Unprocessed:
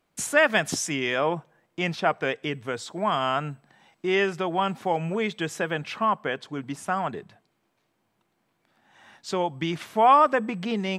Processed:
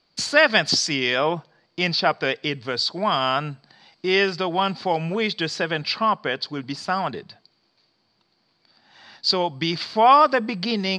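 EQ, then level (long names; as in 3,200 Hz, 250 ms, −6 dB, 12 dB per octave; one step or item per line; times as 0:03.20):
low-pass with resonance 4,600 Hz, resonance Q 14
+2.5 dB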